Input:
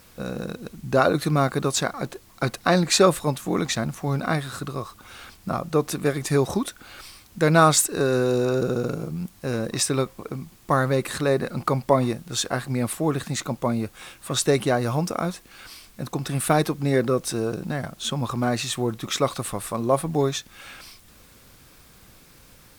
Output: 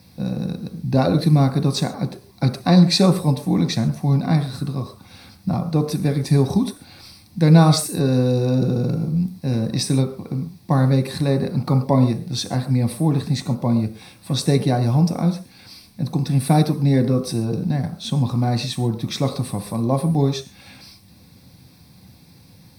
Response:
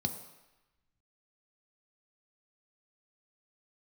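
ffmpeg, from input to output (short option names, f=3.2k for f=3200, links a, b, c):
-filter_complex "[0:a]equalizer=f=650:t=o:w=1.7:g=-2.5[a];[1:a]atrim=start_sample=2205,afade=t=out:st=0.2:d=0.01,atrim=end_sample=9261[b];[a][b]afir=irnorm=-1:irlink=0,volume=-4dB"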